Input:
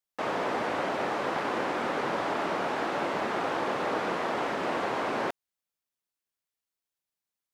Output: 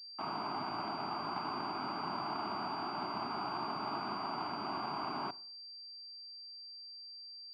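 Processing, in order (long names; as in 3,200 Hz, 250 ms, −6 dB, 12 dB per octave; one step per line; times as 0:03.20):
parametric band 78 Hz +3.5 dB 2.1 octaves
phaser with its sweep stopped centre 1,800 Hz, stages 6
frequency shifter +25 Hz
on a send at −19.5 dB: convolution reverb RT60 0.50 s, pre-delay 36 ms
on the sum: switching amplifier with a slow clock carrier 4,700 Hz
level −5 dB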